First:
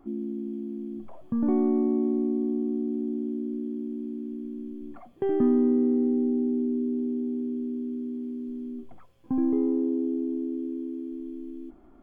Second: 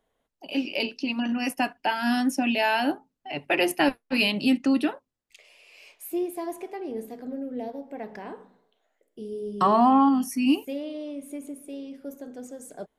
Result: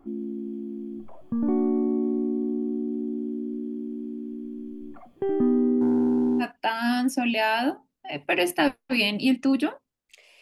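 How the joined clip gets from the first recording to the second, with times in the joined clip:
first
0:05.81–0:06.45: leveller curve on the samples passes 1
0:06.42: continue with second from 0:01.63, crossfade 0.06 s

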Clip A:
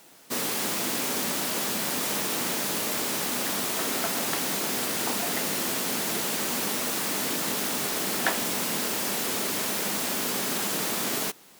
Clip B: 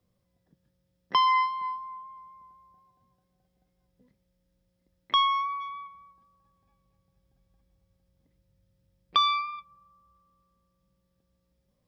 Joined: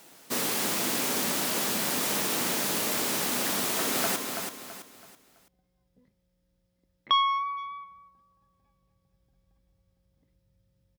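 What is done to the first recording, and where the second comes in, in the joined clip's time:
clip A
0:03.62–0:04.16: delay throw 330 ms, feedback 35%, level −6 dB
0:04.16: continue with clip B from 0:02.19

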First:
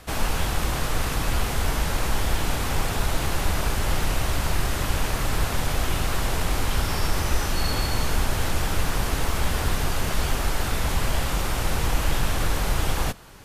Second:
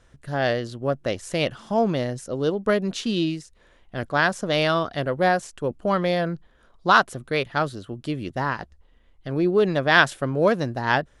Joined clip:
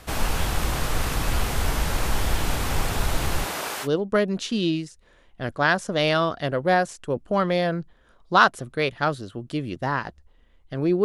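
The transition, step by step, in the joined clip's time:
first
0:03.44–0:03.88: high-pass filter 250 Hz → 610 Hz
0:03.85: continue with second from 0:02.39, crossfade 0.06 s

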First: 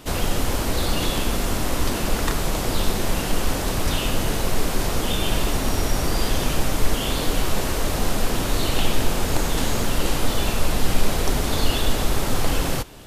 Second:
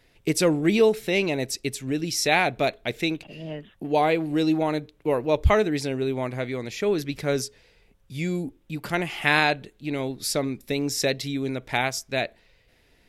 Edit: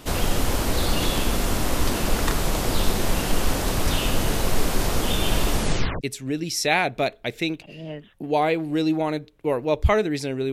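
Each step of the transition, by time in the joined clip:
first
0:05.54: tape stop 0.47 s
0:06.01: continue with second from 0:01.62

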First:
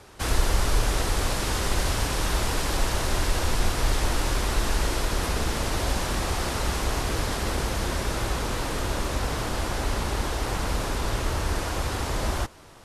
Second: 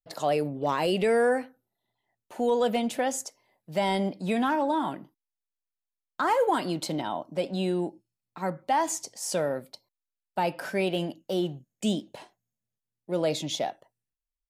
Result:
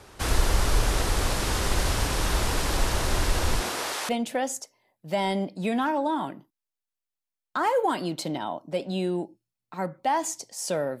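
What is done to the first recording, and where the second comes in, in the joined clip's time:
first
0:03.59–0:04.09: high-pass filter 200 Hz → 830 Hz
0:04.09: continue with second from 0:02.73

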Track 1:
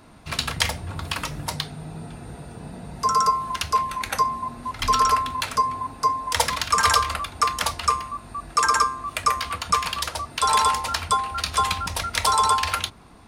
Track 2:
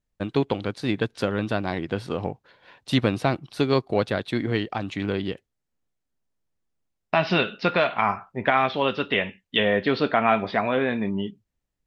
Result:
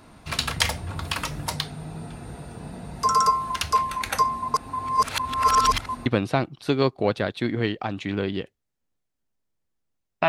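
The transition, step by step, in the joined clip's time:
track 1
0:04.54–0:06.06: reverse
0:06.06: continue with track 2 from 0:02.97

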